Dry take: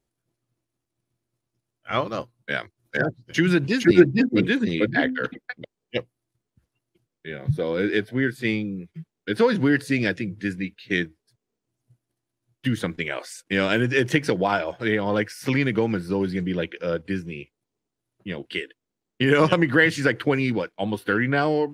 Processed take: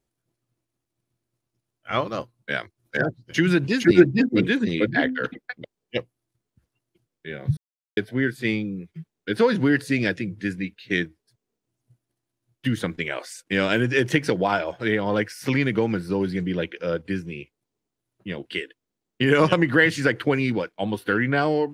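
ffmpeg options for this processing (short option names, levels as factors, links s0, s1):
-filter_complex "[0:a]asplit=3[s0][s1][s2];[s0]atrim=end=7.57,asetpts=PTS-STARTPTS,afade=t=out:st=7.566:d=0.004:c=hsin[s3];[s1]atrim=start=7.57:end=7.97,asetpts=PTS-STARTPTS,volume=0[s4];[s2]atrim=start=7.97,asetpts=PTS-STARTPTS,afade=t=in:d=0.004:c=hsin[s5];[s3][s4][s5]concat=n=3:v=0:a=1"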